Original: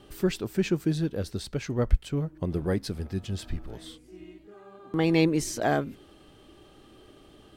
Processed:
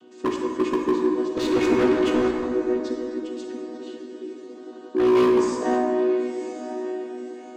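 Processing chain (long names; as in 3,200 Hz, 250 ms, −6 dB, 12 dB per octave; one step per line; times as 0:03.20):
channel vocoder with a chord as carrier major triad, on B3
high-shelf EQ 5,200 Hz +11 dB
on a send: feedback delay with all-pass diffusion 1,012 ms, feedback 41%, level −10 dB
on the sum: wave folding −20 dBFS
0:01.37–0:02.31: mid-hump overdrive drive 30 dB, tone 2,100 Hz, clips at −20 dBFS
dense smooth reverb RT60 2.5 s, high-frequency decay 0.5×, DRR 0 dB
level +3.5 dB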